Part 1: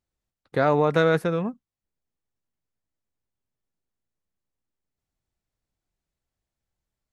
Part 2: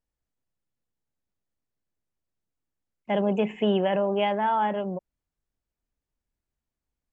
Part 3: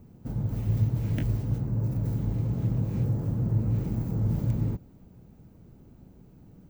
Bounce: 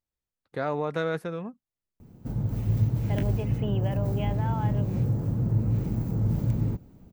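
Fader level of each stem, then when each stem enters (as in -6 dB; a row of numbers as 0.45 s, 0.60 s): -8.5 dB, -11.0 dB, +1.0 dB; 0.00 s, 0.00 s, 2.00 s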